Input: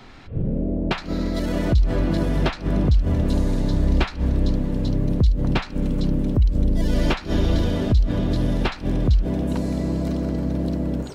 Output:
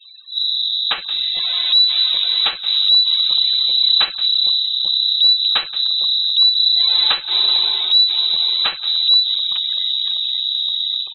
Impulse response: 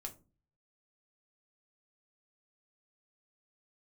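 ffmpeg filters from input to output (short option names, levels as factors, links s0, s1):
-filter_complex "[0:a]acrossover=split=1300[s0][s1];[s0]bandreject=f=610:w=17[s2];[s1]aexciter=amount=2.1:drive=1.4:freq=2600[s3];[s2][s3]amix=inputs=2:normalize=0,afftfilt=real='re*gte(hypot(re,im),0.0158)':imag='im*gte(hypot(re,im),0.0158)':win_size=1024:overlap=0.75,asplit=2[s4][s5];[s5]adelay=174.9,volume=0.141,highshelf=f=4000:g=-3.94[s6];[s4][s6]amix=inputs=2:normalize=0,lowpass=f=3400:t=q:w=0.5098,lowpass=f=3400:t=q:w=0.6013,lowpass=f=3400:t=q:w=0.9,lowpass=f=3400:t=q:w=2.563,afreqshift=-4000,volume=1.41"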